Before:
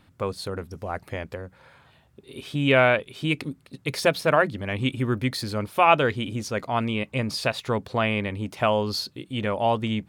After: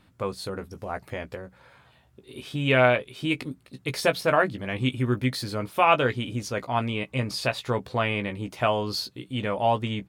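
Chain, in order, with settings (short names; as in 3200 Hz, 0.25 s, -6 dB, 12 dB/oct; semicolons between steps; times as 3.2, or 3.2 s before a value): doubler 16 ms -7.5 dB; gain -1.5 dB; MP3 96 kbps 44100 Hz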